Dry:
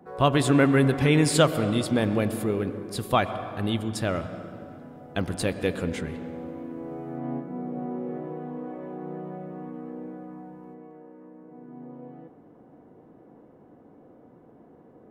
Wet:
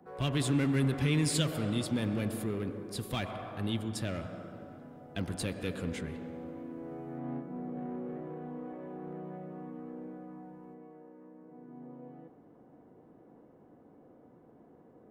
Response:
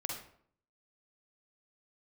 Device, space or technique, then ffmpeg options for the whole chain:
one-band saturation: -filter_complex "[0:a]acrossover=split=290|2100[a][b][c];[b]asoftclip=type=tanh:threshold=-32.5dB[d];[a][d][c]amix=inputs=3:normalize=0,volume=-5.5dB"

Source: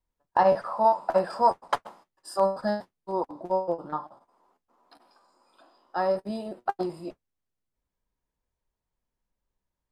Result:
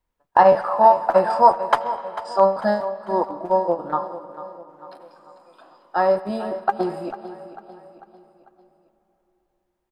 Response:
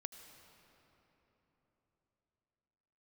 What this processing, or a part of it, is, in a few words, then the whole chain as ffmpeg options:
filtered reverb send: -filter_complex "[0:a]asplit=3[a][b][c];[a]afade=t=out:st=1.83:d=0.02[d];[b]lowpass=f=6.7k:w=0.5412,lowpass=f=6.7k:w=1.3066,afade=t=in:st=1.83:d=0.02,afade=t=out:st=2.57:d=0.02[e];[c]afade=t=in:st=2.57:d=0.02[f];[d][e][f]amix=inputs=3:normalize=0,aecho=1:1:446|892|1338|1784:0.2|0.0938|0.0441|0.0207,asplit=2[g][h];[h]highpass=f=500:p=1,lowpass=3.4k[i];[1:a]atrim=start_sample=2205[j];[i][j]afir=irnorm=-1:irlink=0,volume=2dB[k];[g][k]amix=inputs=2:normalize=0,volume=3.5dB"

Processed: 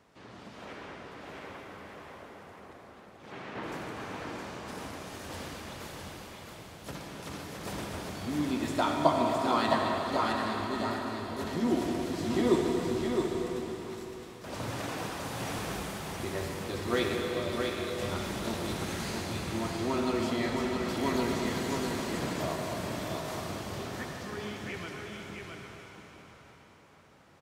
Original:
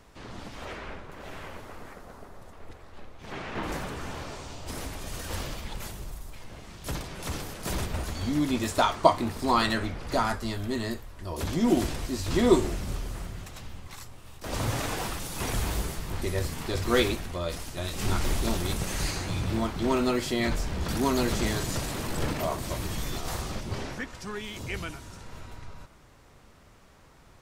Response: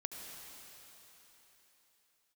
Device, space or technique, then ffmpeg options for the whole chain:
swimming-pool hall: -filter_complex "[1:a]atrim=start_sample=2205[a];[0:a][a]afir=irnorm=-1:irlink=0,highpass=120,highshelf=f=5.4k:g=-7,aecho=1:1:663:0.596,volume=-2dB"

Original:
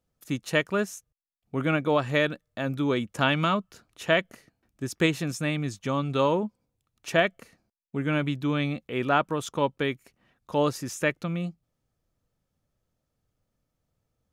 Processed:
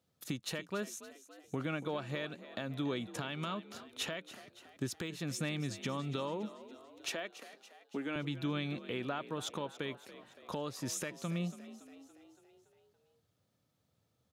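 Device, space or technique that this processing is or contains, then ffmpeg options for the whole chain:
broadcast voice chain: -filter_complex "[0:a]highpass=f=83:w=0.5412,highpass=f=83:w=1.3066,deesser=0.65,acompressor=threshold=-34dB:ratio=4,equalizer=f=3.8k:t=o:w=0.61:g=6,alimiter=level_in=2dB:limit=-24dB:level=0:latency=1:release=366,volume=-2dB,asettb=1/sr,asplit=3[a][b][c];[a]atrim=end=7.114[d];[b]atrim=start=7.11:end=8.16,asetpts=PTS-STARTPTS,afade=t=in:d=0.004:c=qsin,afade=t=out:st=1.046:d=0.004:c=qsin,highpass=f=230:w=0.5412,highpass=f=230:w=1.3066[e];[c]atrim=start=8.156[f];[d][e]acrossfade=d=0.004:c1=hsin:c2=qsin[g];[g][f]acrossfade=d=0.004:c1=qsin:c2=hsin,asplit=7[h][i][j][k][l][m][n];[i]adelay=283,afreqshift=48,volume=-15dB[o];[j]adelay=566,afreqshift=96,volume=-19.9dB[p];[k]adelay=849,afreqshift=144,volume=-24.8dB[q];[l]adelay=1132,afreqshift=192,volume=-29.6dB[r];[m]adelay=1415,afreqshift=240,volume=-34.5dB[s];[n]adelay=1698,afreqshift=288,volume=-39.4dB[t];[h][o][p][q][r][s][t]amix=inputs=7:normalize=0,volume=1dB"

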